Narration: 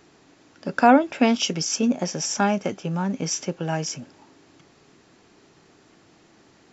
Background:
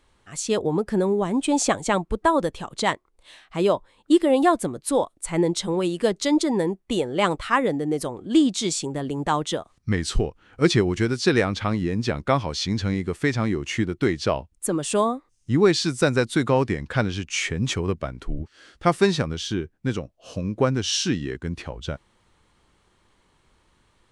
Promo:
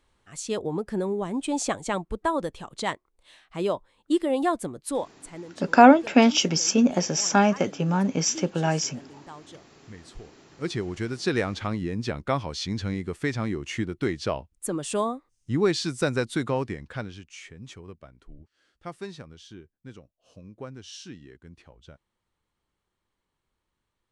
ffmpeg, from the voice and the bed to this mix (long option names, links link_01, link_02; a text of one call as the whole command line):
ffmpeg -i stem1.wav -i stem2.wav -filter_complex "[0:a]adelay=4950,volume=2dB[link_01];[1:a]volume=10.5dB,afade=type=out:start_time=4.91:duration=0.54:silence=0.16788,afade=type=in:start_time=10.25:duration=1.19:silence=0.149624,afade=type=out:start_time=16.31:duration=1.06:silence=0.211349[link_02];[link_01][link_02]amix=inputs=2:normalize=0" out.wav